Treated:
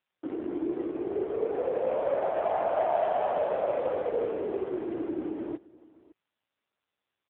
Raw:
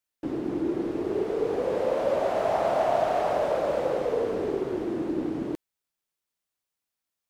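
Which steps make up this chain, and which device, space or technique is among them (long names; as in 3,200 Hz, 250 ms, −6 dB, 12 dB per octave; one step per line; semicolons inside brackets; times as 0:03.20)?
0:00.84–0:02.95: dynamic equaliser 6,000 Hz, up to −8 dB, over −57 dBFS, Q 1.2
satellite phone (band-pass filter 310–3,200 Hz; single-tap delay 566 ms −22 dB; AMR narrowband 5.9 kbit/s 8,000 Hz)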